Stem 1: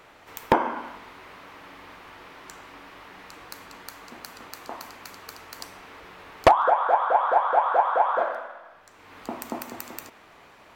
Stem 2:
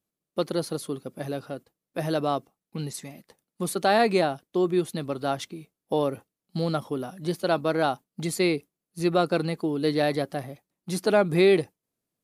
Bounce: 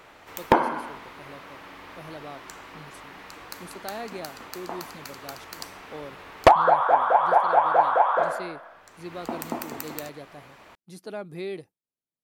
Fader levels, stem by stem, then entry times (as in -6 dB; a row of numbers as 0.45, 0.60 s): +1.5, -15.0 dB; 0.00, 0.00 s